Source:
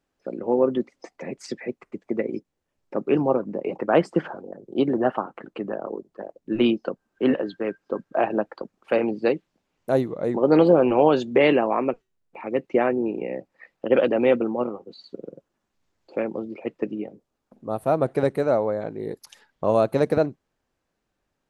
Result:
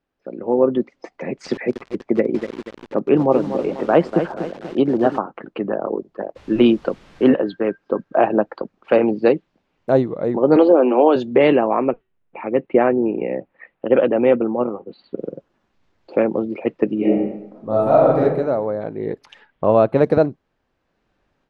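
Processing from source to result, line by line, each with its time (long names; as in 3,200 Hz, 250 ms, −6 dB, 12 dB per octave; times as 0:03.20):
0:01.18–0:05.18: feedback echo at a low word length 242 ms, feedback 55%, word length 6 bits, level −9 dB
0:06.35–0:07.28: background noise pink −53 dBFS
0:10.56–0:11.16: Butterworth high-pass 210 Hz 72 dB per octave
0:11.88–0:15.18: low-pass filter 3,200 Hz 24 dB per octave
0:16.95–0:18.20: thrown reverb, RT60 1 s, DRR −7.5 dB
0:18.98–0:20.04: high shelf with overshoot 3,700 Hz −6.5 dB, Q 1.5
whole clip: low-pass filter 3,900 Hz 12 dB per octave; dynamic equaliser 2,300 Hz, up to −4 dB, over −40 dBFS, Q 1.1; automatic gain control; level −1 dB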